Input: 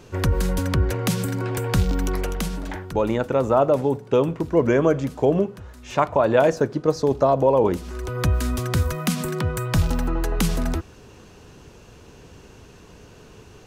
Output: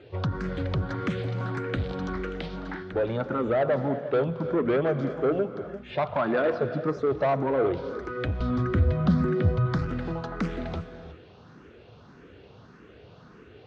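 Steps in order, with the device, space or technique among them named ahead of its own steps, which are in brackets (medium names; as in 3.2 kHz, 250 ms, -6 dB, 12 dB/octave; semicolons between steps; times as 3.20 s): barber-pole phaser into a guitar amplifier (barber-pole phaser +1.7 Hz; saturation -19 dBFS, distortion -12 dB; cabinet simulation 92–3900 Hz, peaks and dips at 950 Hz -4 dB, 1.3 kHz +4 dB, 2.7 kHz -5 dB); 8.40–9.66 s: tilt EQ -2.5 dB/octave; gated-style reverb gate 390 ms rising, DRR 10.5 dB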